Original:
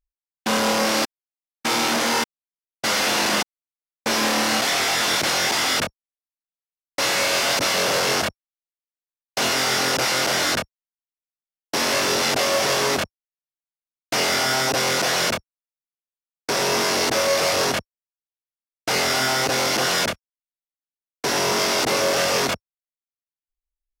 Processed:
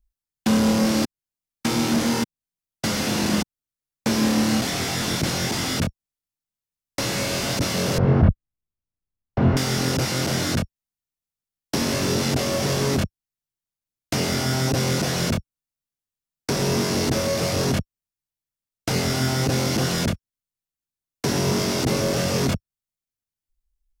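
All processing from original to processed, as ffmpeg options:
-filter_complex "[0:a]asettb=1/sr,asplit=3[a][b][c];[a]atrim=end=7.984[d];[b]atrim=start=7.98:end=9.57,asetpts=PTS-STARTPTS,afade=t=in:d=0.004:c=qsin,afade=t=out:st=1.586:d=0.004:c=qsin,lowpass=1.3k,aemphasis=mode=reproduction:type=bsi[e];[c]atrim=start=9.566[f];[d][e]acrossfade=d=0.004:c1=hsin:c2=qsin[g];[g][f]acrossfade=d=0.004:c1=qsin:c2=hsin,bass=f=250:g=14,treble=f=4k:g=4,acrossover=split=460[h][i];[i]acompressor=threshold=-29dB:ratio=2.5[j];[h][j]amix=inputs=2:normalize=0"

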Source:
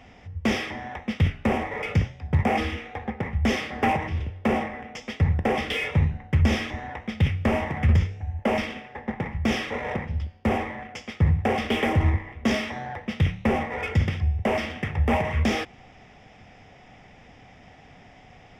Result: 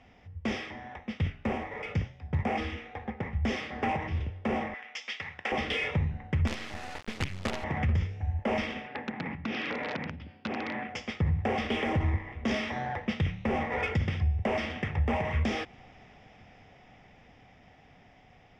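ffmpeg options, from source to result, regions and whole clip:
-filter_complex "[0:a]asettb=1/sr,asplit=3[a][b][c];[a]atrim=end=4.744[d];[b]atrim=start=4.74:end=5.52,asetpts=PTS-STARTPTS,afade=t=in:d=0.004:c=qsin,afade=t=out:st=0.776:d=0.004:c=qsin,bandpass=f=2.1k:t=q:w=0.52,tiltshelf=f=1.5k:g=-8[e];[c]atrim=start=5.516[f];[d][e]acrossfade=d=0.004:c1=hsin:c2=qsin[g];[g][f]acrossfade=d=0.004:c1=qsin:c2=hsin,asettb=1/sr,asplit=3[h][i][j];[h]atrim=end=6.474[k];[i]atrim=start=6.47:end=7.64,asetpts=PTS-STARTPTS,afade=t=in:d=0.004:c=qsin,afade=t=out:st=1.166:d=0.004:c=qsin,lowshelf=f=260:g=-4.5,acrusher=bits=4:dc=4:mix=0:aa=0.000001[l];[j]atrim=start=7.636[m];[k][l]acrossfade=d=0.004:c1=hsin:c2=qsin[n];[n][m]acrossfade=d=0.004:c1=qsin:c2=hsin,asettb=1/sr,asplit=3[o][p][q];[o]atrim=end=8.874[r];[p]atrim=start=8.87:end=10.89,asetpts=PTS-STARTPTS,afade=t=in:d=0.004:c=qsin,afade=t=out:st=2.016:d=0.004:c=qsin,acompressor=threshold=-31dB:ratio=12:attack=3.2:release=140:knee=1:detection=peak,aeval=exprs='(mod(22.4*val(0)+1,2)-1)/22.4':c=same,highpass=140,equalizer=f=170:t=q:w=4:g=5,equalizer=f=280:t=q:w=4:g=9,equalizer=f=1.5k:t=q:w=4:g=4,equalizer=f=2.5k:t=q:w=4:g=5,lowpass=f=4.9k:w=0.5412,lowpass=f=4.9k:w=1.3066[s];[q]atrim=start=10.886[t];[r][s]acrossfade=d=0.004:c1=hsin:c2=qsin[u];[u][t]acrossfade=d=0.004:c1=qsin:c2=hsin,dynaudnorm=f=800:g=11:m=11.5dB,alimiter=limit=-11.5dB:level=0:latency=1:release=275,lowpass=6.1k,volume=-8dB"

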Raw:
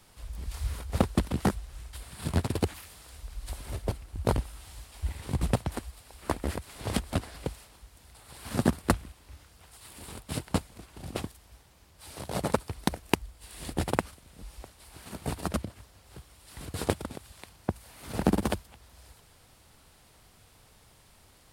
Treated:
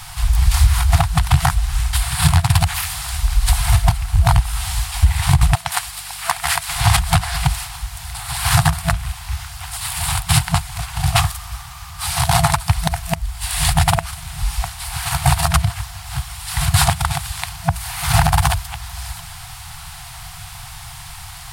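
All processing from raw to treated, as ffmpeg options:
-filter_complex "[0:a]asettb=1/sr,asplit=3[a][b][c];[a]atrim=end=5.554[d];[b]atrim=start=5.55:end=6.69,asetpts=PTS-STARTPTS,afade=t=in:d=0.004:c=qsin,afade=t=out:st=1.136:d=0.004:c=qsin,highpass=f=1.1k:p=1,aeval=exprs='val(0)+0.000398*(sin(2*PI*50*n/s)+sin(2*PI*2*50*n/s)/2+sin(2*PI*3*50*n/s)/3+sin(2*PI*4*50*n/s)/4+sin(2*PI*5*50*n/s)/5)':c=same[e];[c]atrim=start=6.686[f];[d][e]acrossfade=d=0.004:c1=hsin:c2=qsin[g];[g][f]acrossfade=d=0.004:c1=qsin:c2=hsin,asettb=1/sr,asplit=3[h][i][j];[h]atrim=end=11.194[k];[i]atrim=start=11.19:end=12.07,asetpts=PTS-STARTPTS,afade=t=in:d=0.004:c=qsin,afade=t=out:st=0.876:d=0.004:c=qsin,equalizer=f=1.2k:w=7.7:g=11,asoftclip=type=hard:threshold=-33dB[l];[j]atrim=start=12.066[m];[k][l]acrossfade=d=0.004:c1=hsin:c2=qsin[n];[n][m]acrossfade=d=0.004:c1=qsin:c2=hsin,afftfilt=real='re*(1-between(b*sr/4096,170,670))':imag='im*(1-between(b*sr/4096,170,670))':win_size=4096:overlap=0.75,acompressor=threshold=-32dB:ratio=10,alimiter=level_in=25.5dB:limit=-1dB:release=50:level=0:latency=1,volume=-1dB"

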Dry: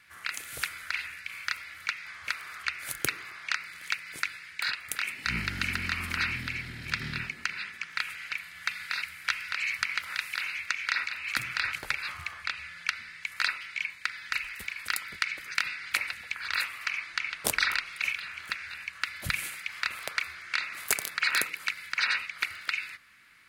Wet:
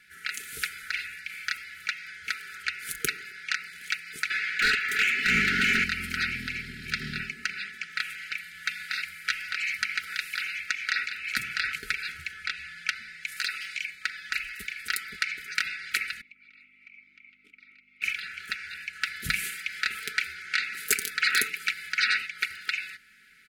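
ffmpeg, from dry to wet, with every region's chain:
-filter_complex "[0:a]asettb=1/sr,asplit=3[a][b][c];[a]atrim=end=4.304[d];[b]atrim=start=4.3:end=5.84,asetpts=PTS-STARTPTS,afade=t=in:d=0.004:c=qsin,afade=t=out:st=1.536:d=0.004:c=qsin,equalizer=f=9.6k:t=o:w=1:g=-6,asplit=2[e][f];[f]highpass=f=720:p=1,volume=25dB,asoftclip=type=tanh:threshold=-13dB[g];[e][g]amix=inputs=2:normalize=0,lowpass=f=2.1k:p=1,volume=-6dB[h];[c]atrim=start=5.836[i];[d][h]acrossfade=d=0.004:c1=hsin:c2=qsin[j];[j][i]acrossfade=d=0.004:c1=qsin:c2=hsin,asettb=1/sr,asplit=3[k][l][m];[k]atrim=end=13.284[n];[l]atrim=start=13.28:end=13.9,asetpts=PTS-STARTPTS,afade=t=in:d=0.004:c=qsin,afade=t=out:st=0.616:d=0.004:c=qsin,highshelf=f=3.5k:g=9.5,acompressor=threshold=-30dB:ratio=2:attack=3.2:release=140:knee=1:detection=peak,aeval=exprs='0.15*(abs(mod(val(0)/0.15+3,4)-2)-1)':c=same[o];[m]atrim=start=13.896[p];[n][o]acrossfade=d=0.004:c1=hsin:c2=qsin[q];[q][p]acrossfade=d=0.004:c1=qsin:c2=hsin,asettb=1/sr,asplit=3[r][s][t];[r]atrim=end=16.214[u];[s]atrim=start=16.21:end=18.02,asetpts=PTS-STARTPTS,afade=t=in:d=0.004:c=qsin,afade=t=out:st=1.806:d=0.004:c=qsin,acrossover=split=940|3000[v][w][x];[v]acompressor=threshold=-58dB:ratio=4[y];[w]acompressor=threshold=-40dB:ratio=4[z];[x]acompressor=threshold=-47dB:ratio=4[aa];[y][z][aa]amix=inputs=3:normalize=0,aeval=exprs='val(0)+0.00178*(sin(2*PI*50*n/s)+sin(2*PI*2*50*n/s)/2+sin(2*PI*3*50*n/s)/3+sin(2*PI*4*50*n/s)/4+sin(2*PI*5*50*n/s)/5)':c=same,asplit=3[ab][ac][ad];[ab]bandpass=f=300:t=q:w=8,volume=0dB[ae];[ac]bandpass=f=870:t=q:w=8,volume=-6dB[af];[ad]bandpass=f=2.24k:t=q:w=8,volume=-9dB[ag];[ae][af][ag]amix=inputs=3:normalize=0[ah];[t]atrim=start=18.016[ai];[u][ah]acrossfade=d=0.004:c1=hsin:c2=qsin[aj];[aj][ai]acrossfade=d=0.004:c1=qsin:c2=hsin,asettb=1/sr,asplit=3[ak][al][am];[ak]atrim=end=18.934[an];[al]atrim=start=18.93:end=22.27,asetpts=PTS-STARTPTS,afade=t=in:d=0.004:c=qsin,afade=t=out:st=3.336:d=0.004:c=qsin,acontrast=64,flanger=delay=2.6:depth=5.7:regen=-83:speed=1.4:shape=sinusoidal[ao];[am]atrim=start=22.266[ap];[an][ao]acrossfade=d=0.004:c1=hsin:c2=qsin[aq];[aq][ap]acrossfade=d=0.004:c1=qsin:c2=hsin,afftfilt=real='re*(1-between(b*sr/4096,470,1300))':imag='im*(1-between(b*sr/4096,470,1300))':win_size=4096:overlap=0.75,aecho=1:1:4.7:0.56"

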